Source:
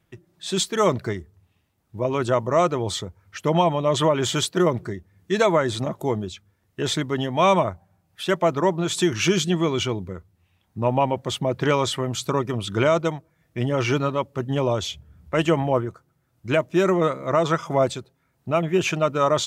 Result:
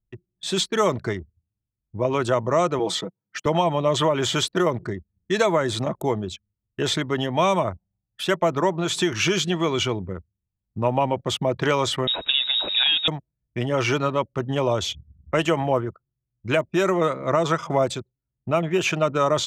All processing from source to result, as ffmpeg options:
-filter_complex "[0:a]asettb=1/sr,asplit=3[a][b][c];[a]atrim=end=2.794[d];[b]atrim=start=2.79:end=3.46,asetpts=PTS-STARTPTS,afade=t=in:d=0.004:c=qsin,afade=t=out:st=0.666:d=0.004:c=qsin,highpass=f=170:w=0.5412,highpass=f=170:w=1.3066,highshelf=f=7.8k:g=-4,aecho=1:1:6.2:0.64,atrim=end_sample=29547[e];[c]atrim=start=3.456[f];[d][e]acrossfade=d=0.004:c1=hsin:c2=qsin[g];[g][f]acrossfade=d=0.004:c1=qsin:c2=hsin,asettb=1/sr,asplit=3[h][i][j];[h]atrim=end=12.074[k];[i]atrim=start=12.07:end=13.08,asetpts=PTS-STARTPTS,afade=t=in:d=0.004:c=qsin,afade=t=out:st=1.006:d=0.004:c=qsin,aeval=exprs='val(0)+0.5*0.0266*sgn(val(0))':c=same,lowpass=f=3.3k:t=q:w=0.5098,lowpass=f=3.3k:t=q:w=0.6013,lowpass=f=3.3k:t=q:w=0.9,lowpass=f=3.3k:t=q:w=2.563,afreqshift=-3900[l];[j]atrim=start=13.076[m];[k][l]acrossfade=d=0.004:c1=hsin:c2=qsin[n];[n][m]acrossfade=d=0.004:c1=qsin:c2=hsin,anlmdn=0.398,acrossover=split=440|5400[o][p][q];[o]acompressor=threshold=-27dB:ratio=4[r];[p]acompressor=threshold=-21dB:ratio=4[s];[q]acompressor=threshold=-37dB:ratio=4[t];[r][s][t]amix=inputs=3:normalize=0,volume=2.5dB"

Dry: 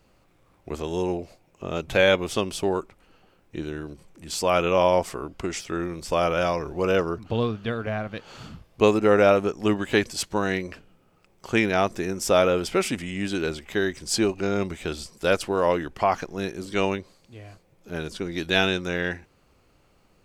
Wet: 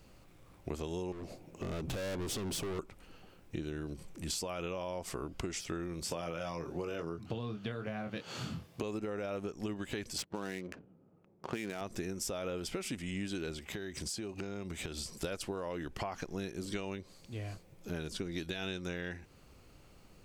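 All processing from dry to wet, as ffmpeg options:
-filter_complex "[0:a]asettb=1/sr,asplit=3[a][b][c];[a]atrim=end=1.124[d];[b]atrim=start=1.12:end=2.79,asetpts=PTS-STARTPTS,afade=t=in:d=0.004:c=qsin,afade=t=out:st=1.666:d=0.004:c=qsin,equalizer=f=290:t=o:w=2.7:g=10,acompressor=threshold=-23dB:ratio=5:attack=3.2:release=140:knee=1:detection=peak,volume=33.5dB,asoftclip=hard,volume=-33.5dB[e];[c]atrim=start=2.786[f];[d][e]acrossfade=d=0.004:c1=hsin:c2=qsin[g];[g][f]acrossfade=d=0.004:c1=qsin:c2=hsin,asettb=1/sr,asplit=3[h][i][j];[h]atrim=end=6.034[k];[i]atrim=start=6.03:end=8.83,asetpts=PTS-STARTPTS,afade=t=in:d=0.004:c=qsin,afade=t=out:st=2.796:d=0.004:c=qsin,highpass=f=93:w=0.5412,highpass=f=93:w=1.3066,asplit=2[l][m];[m]adelay=24,volume=-6dB[n];[l][n]amix=inputs=2:normalize=0,atrim=end_sample=123480[o];[j]atrim=start=8.826[p];[k][o]acrossfade=d=0.004:c1=hsin:c2=qsin[q];[q][p]acrossfade=d=0.004:c1=qsin:c2=hsin,asettb=1/sr,asplit=3[r][s][t];[r]atrim=end=10.184[u];[s]atrim=start=10.18:end=11.81,asetpts=PTS-STARTPTS,afade=t=in:d=0.004:c=qsin,afade=t=out:st=1.626:d=0.004:c=qsin,highpass=150,adynamicsmooth=sensitivity=7.5:basefreq=610[v];[t]atrim=start=11.806[w];[u][v]acrossfade=d=0.004:c1=hsin:c2=qsin[x];[x][w]acrossfade=d=0.004:c1=qsin:c2=hsin,asettb=1/sr,asplit=3[y][z][aa];[y]atrim=end=13.604[ab];[z]atrim=start=13.6:end=15.09,asetpts=PTS-STARTPTS,afade=t=in:d=0.004:c=qsin,afade=t=out:st=1.486:d=0.004:c=qsin,highpass=49,acompressor=threshold=-37dB:ratio=10:attack=3.2:release=140:knee=1:detection=peak[ac];[aa]atrim=start=15.086[ad];[ab][ac]acrossfade=d=0.004:c1=hsin:c2=qsin[ae];[ae][ad]acrossfade=d=0.004:c1=qsin:c2=hsin,alimiter=limit=-15.5dB:level=0:latency=1:release=97,equalizer=f=980:w=0.36:g=-5,acompressor=threshold=-39dB:ratio=12,volume=4dB"

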